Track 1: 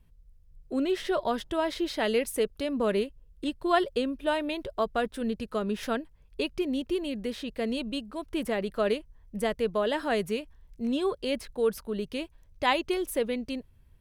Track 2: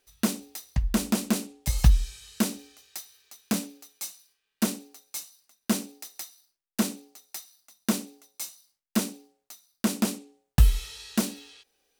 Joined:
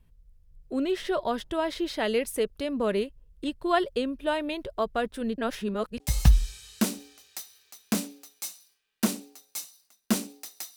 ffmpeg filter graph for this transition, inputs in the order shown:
ffmpeg -i cue0.wav -i cue1.wav -filter_complex "[0:a]apad=whole_dur=10.76,atrim=end=10.76,asplit=2[link_01][link_02];[link_01]atrim=end=5.382[link_03];[link_02]atrim=start=5.378:end=6.002,asetpts=PTS-STARTPTS,areverse[link_04];[1:a]atrim=start=1.588:end=6.35[link_05];[link_03][link_04]acrossfade=duration=0.004:curve1=hsin:curve2=hsin[link_06];[link_06][link_05]acrossfade=duration=0.004:curve1=hsin:curve2=hsin" out.wav

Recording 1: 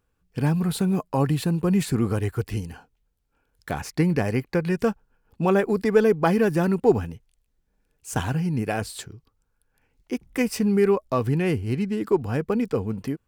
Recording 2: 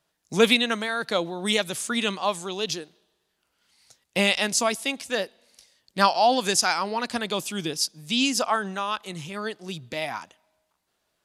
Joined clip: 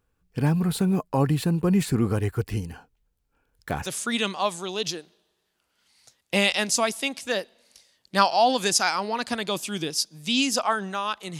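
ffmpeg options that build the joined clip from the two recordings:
ffmpeg -i cue0.wav -i cue1.wav -filter_complex "[0:a]apad=whole_dur=11.39,atrim=end=11.39,atrim=end=3.862[link_01];[1:a]atrim=start=1.688:end=9.22[link_02];[link_01][link_02]acrossfade=duration=0.004:curve1=hsin:curve2=hsin" out.wav

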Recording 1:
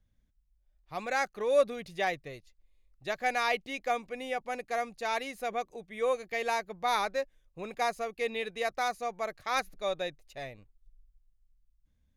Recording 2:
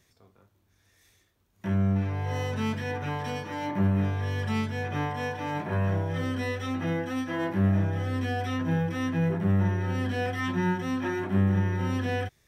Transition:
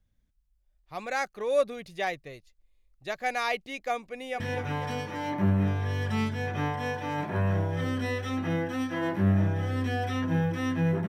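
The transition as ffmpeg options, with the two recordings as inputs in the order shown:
ffmpeg -i cue0.wav -i cue1.wav -filter_complex "[0:a]apad=whole_dur=11.08,atrim=end=11.08,atrim=end=4.402[link_01];[1:a]atrim=start=2.768:end=9.45[link_02];[link_01][link_02]acrossfade=duration=0.004:curve1=hsin:curve2=hsin,asplit=2[link_03][link_04];[link_04]afade=type=in:start_time=4.06:duration=0.01,afade=type=out:start_time=4.4:duration=0.01,aecho=0:1:250|500|750|1000|1250|1500|1750:0.446684|0.245676|0.135122|0.074317|0.0408743|0.0224809|0.0123645[link_05];[link_03][link_05]amix=inputs=2:normalize=0" out.wav

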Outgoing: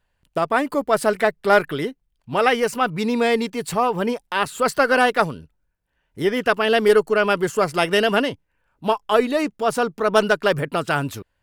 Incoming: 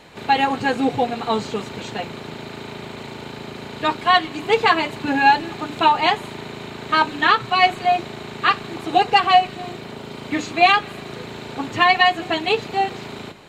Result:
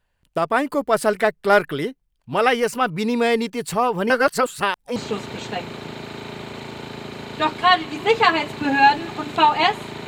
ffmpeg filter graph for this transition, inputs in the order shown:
ffmpeg -i cue0.wav -i cue1.wav -filter_complex "[0:a]apad=whole_dur=10.07,atrim=end=10.07,asplit=2[link_01][link_02];[link_01]atrim=end=4.102[link_03];[link_02]atrim=start=4.098:end=4.962,asetpts=PTS-STARTPTS,areverse[link_04];[1:a]atrim=start=1.388:end=6.5[link_05];[link_03][link_04]acrossfade=duration=0.004:curve1=hsin:curve2=hsin[link_06];[link_06][link_05]acrossfade=duration=0.004:curve1=hsin:curve2=hsin" out.wav

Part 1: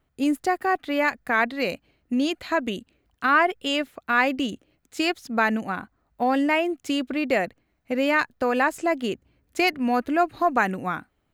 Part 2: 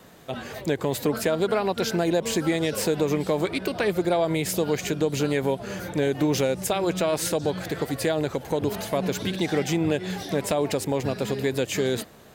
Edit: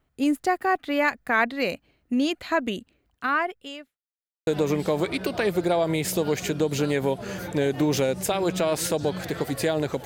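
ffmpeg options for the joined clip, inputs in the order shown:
ffmpeg -i cue0.wav -i cue1.wav -filter_complex "[0:a]apad=whole_dur=10.05,atrim=end=10.05,asplit=2[link_01][link_02];[link_01]atrim=end=3.97,asetpts=PTS-STARTPTS,afade=type=out:start_time=2.85:duration=1.12[link_03];[link_02]atrim=start=3.97:end=4.47,asetpts=PTS-STARTPTS,volume=0[link_04];[1:a]atrim=start=2.88:end=8.46,asetpts=PTS-STARTPTS,afade=type=in:duration=0.004:curve=hsin[link_05];[link_03][link_04][link_05]concat=n=3:v=0:a=1" out.wav

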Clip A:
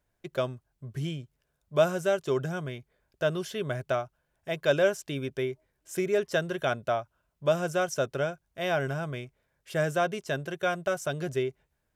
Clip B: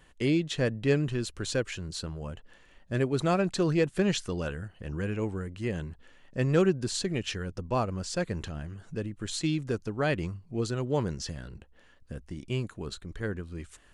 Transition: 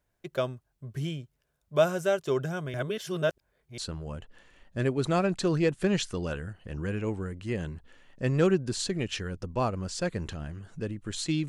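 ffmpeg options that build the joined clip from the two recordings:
ffmpeg -i cue0.wav -i cue1.wav -filter_complex "[0:a]apad=whole_dur=11.48,atrim=end=11.48,asplit=2[link_01][link_02];[link_01]atrim=end=2.742[link_03];[link_02]atrim=start=2.738:end=3.782,asetpts=PTS-STARTPTS,areverse[link_04];[1:a]atrim=start=1.928:end=9.63[link_05];[link_03][link_04]acrossfade=duration=0.004:curve1=hsin:curve2=hsin[link_06];[link_06][link_05]acrossfade=duration=0.004:curve1=hsin:curve2=hsin" out.wav

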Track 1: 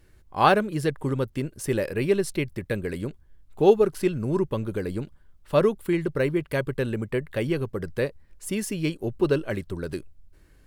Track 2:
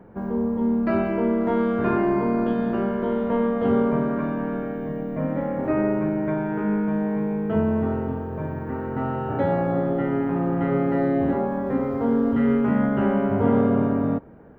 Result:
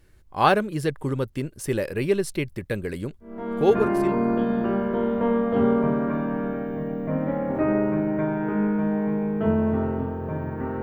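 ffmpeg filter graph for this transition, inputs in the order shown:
ffmpeg -i cue0.wav -i cue1.wav -filter_complex "[0:a]apad=whole_dur=10.82,atrim=end=10.82,atrim=end=4.38,asetpts=PTS-STARTPTS[link_01];[1:a]atrim=start=1.29:end=8.91,asetpts=PTS-STARTPTS[link_02];[link_01][link_02]acrossfade=duration=1.18:curve1=qsin:curve2=qsin" out.wav

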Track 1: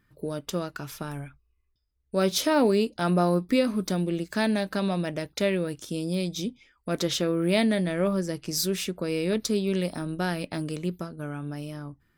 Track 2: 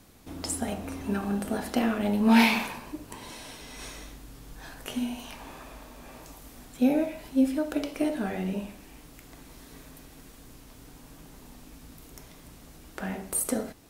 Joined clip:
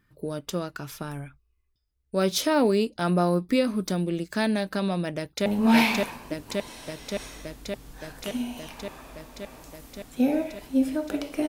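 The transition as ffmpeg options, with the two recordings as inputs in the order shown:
ffmpeg -i cue0.wav -i cue1.wav -filter_complex "[0:a]apad=whole_dur=11.48,atrim=end=11.48,atrim=end=5.462[link_01];[1:a]atrim=start=2.078:end=8.1[link_02];[link_01][link_02]acrossfade=duration=0.004:curve1=hsin:curve2=hsin,asplit=2[link_03][link_04];[link_04]afade=type=in:start_time=5.16:duration=0.01,afade=type=out:start_time=5.46:duration=0.01,aecho=0:1:570|1140|1710|2280|2850|3420|3990|4560|5130|5700|6270|6840:0.891251|0.713001|0.570401|0.45632|0.365056|0.292045|0.233636|0.186909|0.149527|0.119622|0.0956973|0.0765579[link_05];[link_03][link_05]amix=inputs=2:normalize=0" out.wav

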